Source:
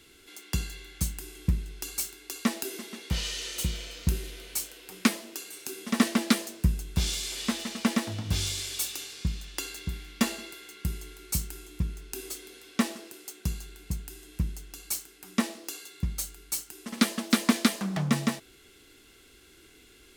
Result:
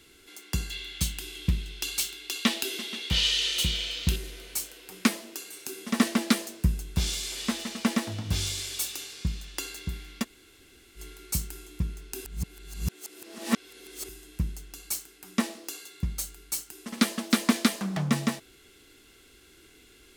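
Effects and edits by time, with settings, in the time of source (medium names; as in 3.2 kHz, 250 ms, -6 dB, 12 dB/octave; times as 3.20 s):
0.70–4.16 s: peaking EQ 3.3 kHz +13 dB 1.1 oct
10.22–10.98 s: room tone, crossfade 0.06 s
12.25–14.09 s: reverse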